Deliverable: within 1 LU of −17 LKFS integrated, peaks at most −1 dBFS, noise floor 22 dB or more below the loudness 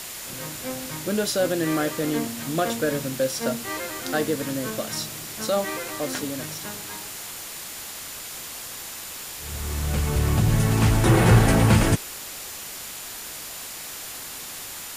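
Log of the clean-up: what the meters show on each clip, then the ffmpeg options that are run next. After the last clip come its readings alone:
interfering tone 7,100 Hz; level of the tone −46 dBFS; background noise floor −37 dBFS; target noise floor −48 dBFS; integrated loudness −25.5 LKFS; sample peak −7.0 dBFS; target loudness −17.0 LKFS
→ -af "bandreject=frequency=7100:width=30"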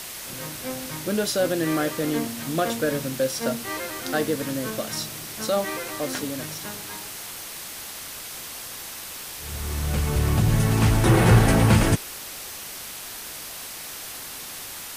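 interfering tone none found; background noise floor −37 dBFS; target noise floor −48 dBFS
→ -af "afftdn=noise_reduction=11:noise_floor=-37"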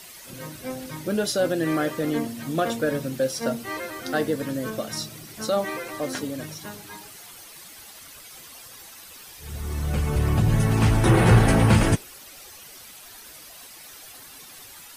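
background noise floor −45 dBFS; target noise floor −46 dBFS
→ -af "afftdn=noise_reduction=6:noise_floor=-45"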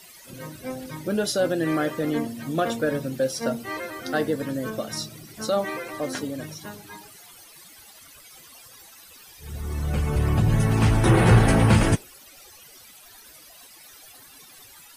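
background noise floor −49 dBFS; integrated loudness −24.0 LKFS; sample peak −7.0 dBFS; target loudness −17.0 LKFS
→ -af "volume=7dB,alimiter=limit=-1dB:level=0:latency=1"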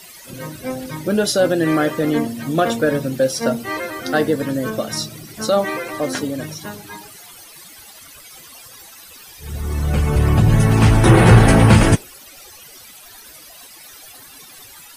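integrated loudness −17.0 LKFS; sample peak −1.0 dBFS; background noise floor −42 dBFS

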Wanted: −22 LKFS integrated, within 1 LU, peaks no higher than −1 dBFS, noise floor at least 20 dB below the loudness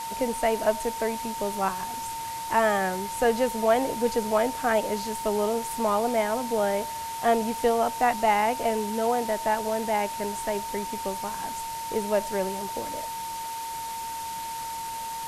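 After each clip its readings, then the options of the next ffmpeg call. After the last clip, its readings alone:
interfering tone 910 Hz; level of the tone −32 dBFS; background noise floor −34 dBFS; target noise floor −47 dBFS; integrated loudness −27.0 LKFS; sample peak −9.0 dBFS; target loudness −22.0 LKFS
→ -af "bandreject=frequency=910:width=30"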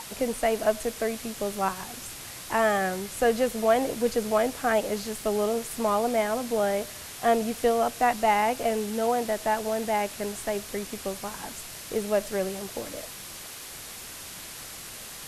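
interfering tone none found; background noise floor −41 dBFS; target noise floor −48 dBFS
→ -af "afftdn=noise_reduction=7:noise_floor=-41"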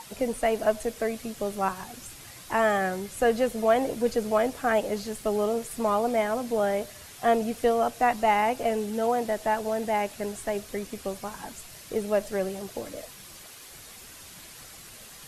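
background noise floor −47 dBFS; integrated loudness −27.0 LKFS; sample peak −11.0 dBFS; target loudness −22.0 LKFS
→ -af "volume=5dB"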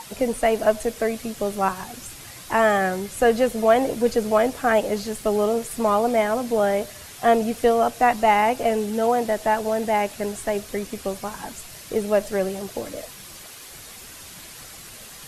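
integrated loudness −22.0 LKFS; sample peak −6.0 dBFS; background noise floor −42 dBFS

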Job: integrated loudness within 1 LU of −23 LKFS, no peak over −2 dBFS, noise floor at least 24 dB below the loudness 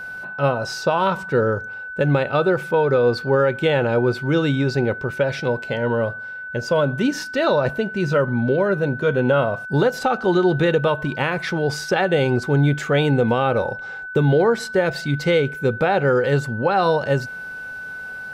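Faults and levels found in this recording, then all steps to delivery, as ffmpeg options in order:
interfering tone 1,500 Hz; level of the tone −30 dBFS; integrated loudness −20.0 LKFS; sample peak −8.0 dBFS; target loudness −23.0 LKFS
→ -af "bandreject=frequency=1500:width=30"
-af "volume=-3dB"

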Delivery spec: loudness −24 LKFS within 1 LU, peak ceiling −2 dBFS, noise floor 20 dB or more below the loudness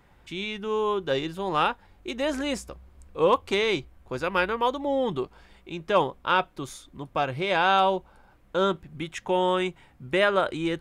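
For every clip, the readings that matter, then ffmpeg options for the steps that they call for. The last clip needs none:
integrated loudness −26.0 LKFS; sample peak −10.0 dBFS; target loudness −24.0 LKFS
→ -af "volume=2dB"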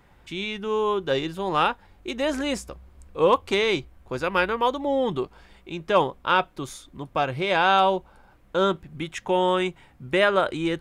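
integrated loudness −24.0 LKFS; sample peak −8.0 dBFS; background noise floor −56 dBFS

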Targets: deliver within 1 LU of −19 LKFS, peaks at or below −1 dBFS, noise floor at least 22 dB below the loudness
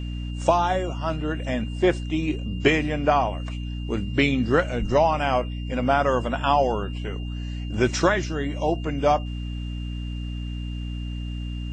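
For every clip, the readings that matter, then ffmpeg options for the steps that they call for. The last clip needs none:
mains hum 60 Hz; hum harmonics up to 300 Hz; level of the hum −28 dBFS; interfering tone 2,800 Hz; level of the tone −44 dBFS; integrated loudness −24.5 LKFS; sample peak −5.5 dBFS; target loudness −19.0 LKFS
→ -af "bandreject=frequency=60:width_type=h:width=4,bandreject=frequency=120:width_type=h:width=4,bandreject=frequency=180:width_type=h:width=4,bandreject=frequency=240:width_type=h:width=4,bandreject=frequency=300:width_type=h:width=4"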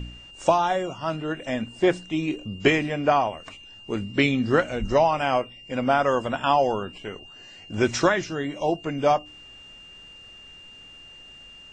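mains hum none found; interfering tone 2,800 Hz; level of the tone −44 dBFS
→ -af "bandreject=frequency=2800:width=30"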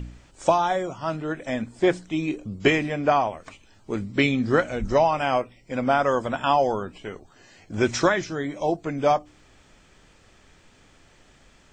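interfering tone none found; integrated loudness −24.0 LKFS; sample peak −6.5 dBFS; target loudness −19.0 LKFS
→ -af "volume=5dB"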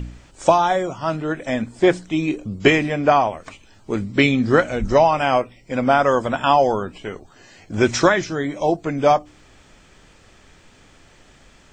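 integrated loudness −19.0 LKFS; sample peak −1.5 dBFS; background noise floor −51 dBFS

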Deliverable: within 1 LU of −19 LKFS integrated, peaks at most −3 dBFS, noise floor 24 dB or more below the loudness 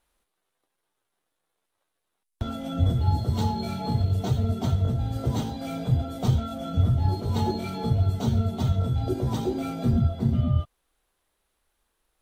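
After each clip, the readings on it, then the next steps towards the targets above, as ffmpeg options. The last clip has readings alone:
integrated loudness −26.0 LKFS; sample peak −10.5 dBFS; target loudness −19.0 LKFS
→ -af "volume=7dB"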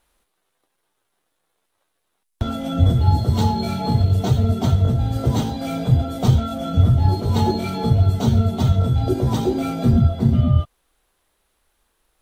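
integrated loudness −19.0 LKFS; sample peak −3.5 dBFS; background noise floor −73 dBFS

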